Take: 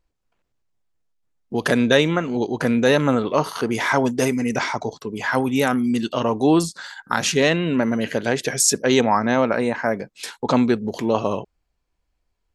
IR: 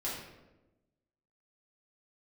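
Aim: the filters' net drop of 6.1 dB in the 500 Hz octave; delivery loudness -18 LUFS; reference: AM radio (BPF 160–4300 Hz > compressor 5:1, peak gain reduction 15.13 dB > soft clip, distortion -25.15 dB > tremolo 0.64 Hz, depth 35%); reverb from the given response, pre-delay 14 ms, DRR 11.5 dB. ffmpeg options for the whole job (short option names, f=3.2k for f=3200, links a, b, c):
-filter_complex "[0:a]equalizer=f=500:t=o:g=-7.5,asplit=2[a][b];[1:a]atrim=start_sample=2205,adelay=14[c];[b][c]afir=irnorm=-1:irlink=0,volume=-15dB[d];[a][d]amix=inputs=2:normalize=0,highpass=160,lowpass=4.3k,acompressor=threshold=-31dB:ratio=5,asoftclip=threshold=-20dB,tremolo=f=0.64:d=0.35,volume=18dB"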